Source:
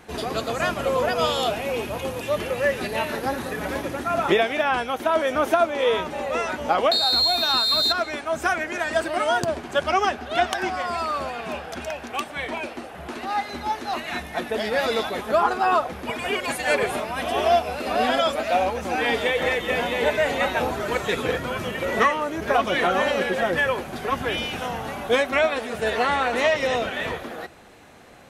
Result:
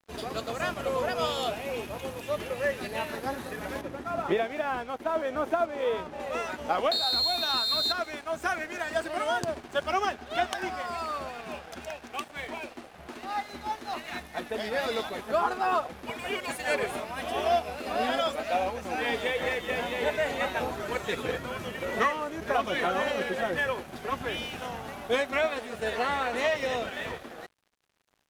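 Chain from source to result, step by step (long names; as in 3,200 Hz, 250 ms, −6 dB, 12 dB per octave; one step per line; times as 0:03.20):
0:03.81–0:06.20: high-shelf EQ 2,400 Hz −11 dB
dead-zone distortion −42.5 dBFS
level −6 dB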